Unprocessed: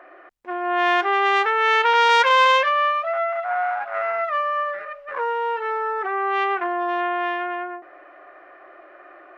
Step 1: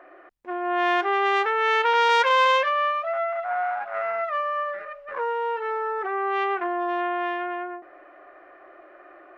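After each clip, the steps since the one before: low shelf 460 Hz +6.5 dB; gain -4.5 dB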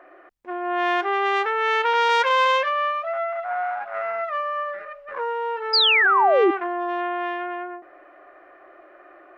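painted sound fall, 5.73–6.51, 320–5100 Hz -17 dBFS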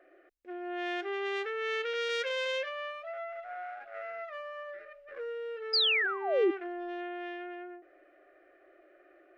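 fixed phaser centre 400 Hz, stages 4; gain -8 dB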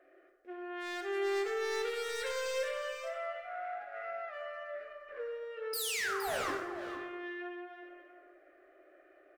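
wavefolder -28.5 dBFS; echo 0.466 s -10 dB; plate-style reverb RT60 1.3 s, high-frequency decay 0.6×, DRR 2 dB; gain -3.5 dB

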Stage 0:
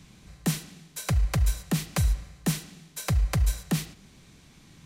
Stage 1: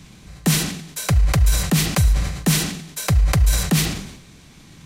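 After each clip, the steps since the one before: sustainer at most 64 dB/s; gain +7.5 dB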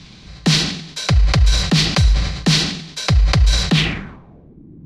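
low-pass sweep 4500 Hz -> 320 Hz, 3.69–4.6; gain +2.5 dB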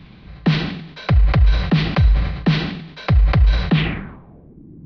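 Gaussian blur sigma 2.9 samples

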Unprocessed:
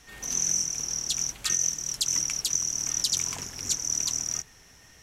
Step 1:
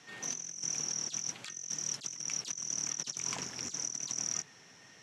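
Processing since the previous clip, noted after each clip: LPF 6000 Hz 12 dB/oct; negative-ratio compressor -34 dBFS, ratio -0.5; HPF 130 Hz 24 dB/oct; gain -3.5 dB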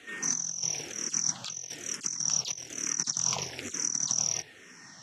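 endless phaser -1.1 Hz; gain +9 dB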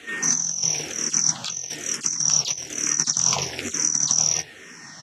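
doubler 13 ms -9.5 dB; gain +8 dB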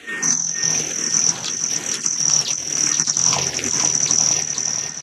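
feedback echo 0.471 s, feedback 43%, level -5.5 dB; gain +3 dB

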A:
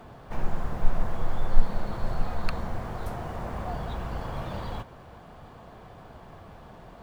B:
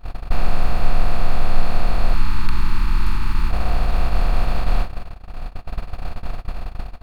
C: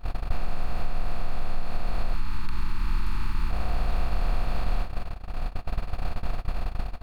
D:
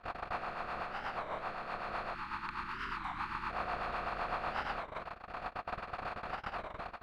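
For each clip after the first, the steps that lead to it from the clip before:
per-bin compression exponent 0.2; gate -15 dBFS, range -32 dB; spectral gain 2.14–3.5, 370–830 Hz -27 dB
compressor 6:1, threshold -19 dBFS, peak gain reduction 13 dB
rotary speaker horn 8 Hz; band-pass 1200 Hz, Q 1.2; record warp 33 1/3 rpm, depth 250 cents; gain +7.5 dB

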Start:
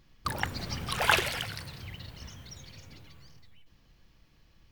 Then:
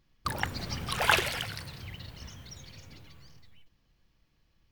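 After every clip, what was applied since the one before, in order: gate -54 dBFS, range -8 dB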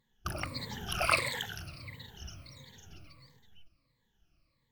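moving spectral ripple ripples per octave 1, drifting -1.5 Hz, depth 19 dB; gain -6.5 dB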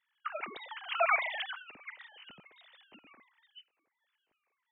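sine-wave speech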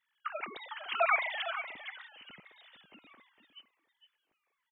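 echo 0.457 s -11 dB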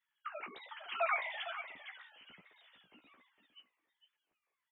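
flange 1.2 Hz, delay 8.9 ms, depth 8.9 ms, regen -17%; gain -2.5 dB

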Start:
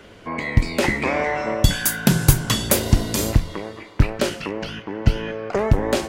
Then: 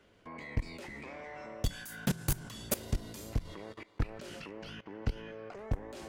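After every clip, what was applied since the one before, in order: soft clip -14 dBFS, distortion -9 dB; level quantiser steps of 19 dB; gain -7.5 dB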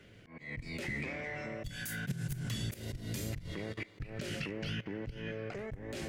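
graphic EQ 125/1000/2000 Hz +10/-10/+6 dB; auto swell 0.214 s; gain +5 dB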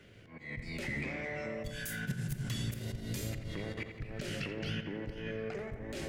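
darkening echo 86 ms, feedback 67%, low-pass 3100 Hz, level -8 dB

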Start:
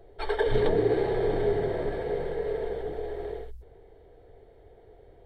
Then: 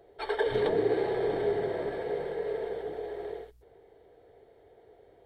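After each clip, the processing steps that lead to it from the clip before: HPF 260 Hz 6 dB/oct; gain -1 dB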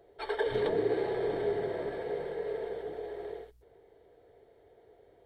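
notch 780 Hz, Q 26; gain -2.5 dB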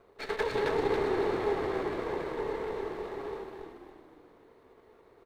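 minimum comb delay 0.48 ms; low shelf 200 Hz -6 dB; on a send: frequency-shifting echo 0.279 s, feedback 44%, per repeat -30 Hz, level -4 dB; on the sum: gain +2 dB

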